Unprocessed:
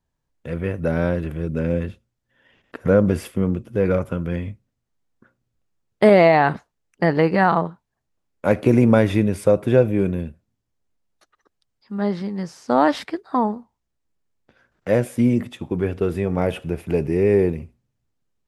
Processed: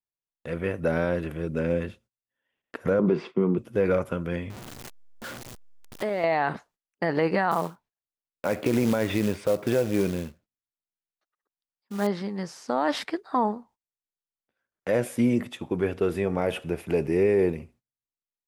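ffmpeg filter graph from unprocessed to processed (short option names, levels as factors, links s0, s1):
-filter_complex "[0:a]asettb=1/sr,asplit=3[s0][s1][s2];[s0]atrim=end=2.994[s3];[s1]atrim=start=2.99:end=3.58,asetpts=PTS-STARTPTS,afade=t=in:d=0.004:c=qsin,afade=t=out:st=0.586:d=0.004:c=qsin,agate=range=0.0224:threshold=0.00891:ratio=3:release=100:detection=peak,highpass=f=150:w=0.5412,highpass=f=150:w=1.3066,equalizer=f=160:t=q:w=4:g=9,equalizer=f=380:t=q:w=4:g=10,equalizer=f=550:t=q:w=4:g=-6,equalizer=f=1000:t=q:w=4:g=6,equalizer=f=1700:t=q:w=4:g=-6,equalizer=f=3000:t=q:w=4:g=-5,lowpass=f=4100:w=0.5412,lowpass=f=4100:w=1.3066[s4];[s2]atrim=start=3.576[s5];[s3][s4]acrossfade=d=0.004:c1=hsin:c2=qsin[s6];[s6][s5]acrossfade=d=0.004:c1=qsin:c2=hsin,asettb=1/sr,asplit=3[s7][s8][s9];[s7]atrim=end=4.504[s10];[s8]atrim=start=4.5:end=6.24,asetpts=PTS-STARTPTS,afade=t=in:d=0.004:c=qsin,afade=t=out:st=1.736:d=0.004:c=qsin,aeval=exprs='val(0)+0.5*0.0299*sgn(val(0))':c=same,acompressor=threshold=0.0398:ratio=3:attack=3.2:release=140:knee=1:detection=peak[s11];[s9]atrim=start=6.236[s12];[s10][s11]acrossfade=d=0.004:c1=hsin:c2=qsin[s13];[s13][s12]acrossfade=d=0.004:c1=qsin:c2=hsin,asettb=1/sr,asplit=3[s14][s15][s16];[s14]atrim=end=7.514[s17];[s15]atrim=start=7.51:end=12.07,asetpts=PTS-STARTPTS,afade=t=in:d=0.004:c=qsin,afade=t=out:st=4.556:d=0.004:c=qsin,lowpass=4400,acrusher=bits=5:mode=log:mix=0:aa=0.000001[s18];[s16]atrim=start=12.066[s19];[s17][s18]acrossfade=d=0.004:c1=hsin:c2=qsin[s20];[s20][s19]acrossfade=d=0.004:c1=qsin:c2=hsin,agate=range=0.0794:threshold=0.00355:ratio=16:detection=peak,lowshelf=f=200:g=-10.5,alimiter=limit=0.224:level=0:latency=1:release=61"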